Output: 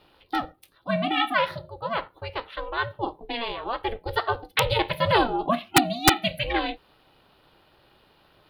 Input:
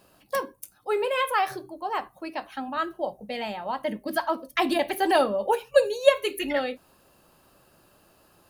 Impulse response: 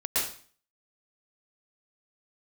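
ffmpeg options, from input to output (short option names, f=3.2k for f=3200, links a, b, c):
-af "aeval=exprs='val(0)*sin(2*PI*230*n/s)':c=same,highshelf=f=5.1k:t=q:w=3:g=-11.5,aeval=exprs='(mod(2.82*val(0)+1,2)-1)/2.82':c=same,volume=3dB"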